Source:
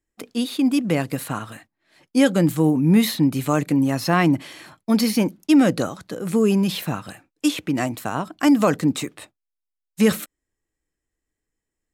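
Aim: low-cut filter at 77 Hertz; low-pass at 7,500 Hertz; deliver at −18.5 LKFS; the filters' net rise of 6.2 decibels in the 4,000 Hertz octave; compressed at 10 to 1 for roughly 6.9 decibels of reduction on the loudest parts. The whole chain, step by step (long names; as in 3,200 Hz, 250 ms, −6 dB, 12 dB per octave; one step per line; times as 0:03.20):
high-pass filter 77 Hz
low-pass filter 7,500 Hz
parametric band 4,000 Hz +8 dB
downward compressor 10 to 1, threshold −18 dBFS
level +6 dB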